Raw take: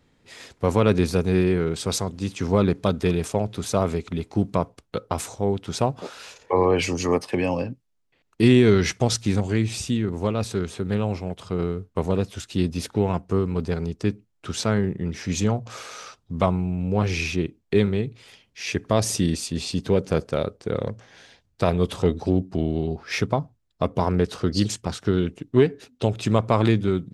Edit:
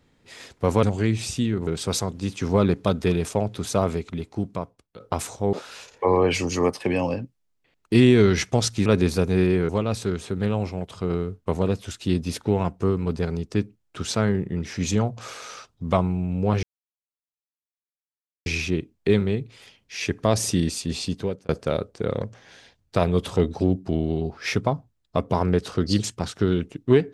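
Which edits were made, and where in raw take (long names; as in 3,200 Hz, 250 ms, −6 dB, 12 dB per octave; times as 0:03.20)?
0:00.83–0:01.66: swap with 0:09.34–0:10.18
0:03.79–0:04.99: fade out linear, to −17 dB
0:05.52–0:06.01: remove
0:17.12: splice in silence 1.83 s
0:19.69–0:20.15: fade out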